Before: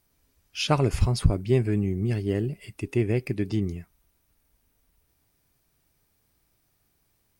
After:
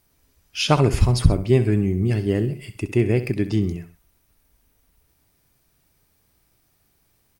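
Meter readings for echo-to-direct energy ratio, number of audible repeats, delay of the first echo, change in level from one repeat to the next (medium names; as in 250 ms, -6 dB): -12.0 dB, 2, 65 ms, -7.0 dB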